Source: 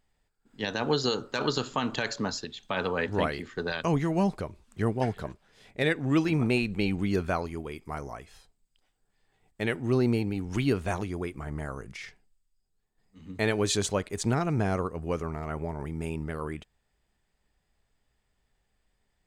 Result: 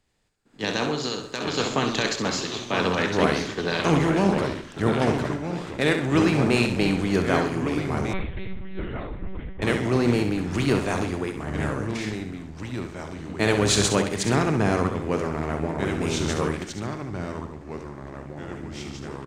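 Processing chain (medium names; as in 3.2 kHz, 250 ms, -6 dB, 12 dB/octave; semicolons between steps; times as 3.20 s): spectral levelling over time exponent 0.6; 0.87–1.58 s: compression, threshold -23 dBFS, peak gain reduction 6 dB; feedback delay 66 ms, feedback 47%, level -7 dB; ever faster or slower copies 751 ms, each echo -2 st, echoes 3, each echo -6 dB; 8.13–9.62 s: monotone LPC vocoder at 8 kHz 190 Hz; three bands expanded up and down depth 70%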